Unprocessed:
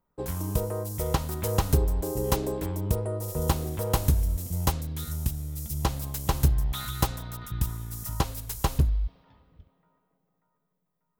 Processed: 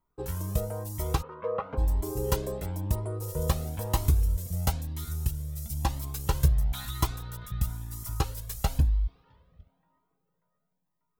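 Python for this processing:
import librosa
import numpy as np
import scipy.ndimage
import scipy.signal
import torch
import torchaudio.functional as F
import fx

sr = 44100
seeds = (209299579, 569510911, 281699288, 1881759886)

y = fx.cabinet(x, sr, low_hz=330.0, low_slope=12, high_hz=2100.0, hz=(340.0, 490.0, 750.0, 1100.0, 1800.0), db=(-7, 7, -6, 10, -7), at=(1.21, 1.77), fade=0.02)
y = fx.comb_cascade(y, sr, direction='rising', hz=1.0)
y = y * librosa.db_to_amplitude(1.5)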